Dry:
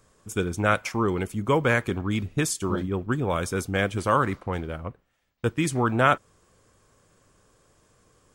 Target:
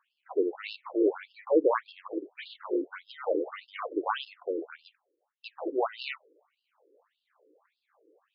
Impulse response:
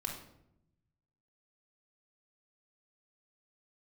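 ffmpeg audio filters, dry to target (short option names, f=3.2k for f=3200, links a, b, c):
-af "acrusher=samples=21:mix=1:aa=0.000001:lfo=1:lforange=12.6:lforate=0.36,aemphasis=mode=reproduction:type=riaa,afftfilt=real='re*between(b*sr/1024,370*pow(3800/370,0.5+0.5*sin(2*PI*1.7*pts/sr))/1.41,370*pow(3800/370,0.5+0.5*sin(2*PI*1.7*pts/sr))*1.41)':imag='im*between(b*sr/1024,370*pow(3800/370,0.5+0.5*sin(2*PI*1.7*pts/sr))/1.41,370*pow(3800/370,0.5+0.5*sin(2*PI*1.7*pts/sr))*1.41)':win_size=1024:overlap=0.75"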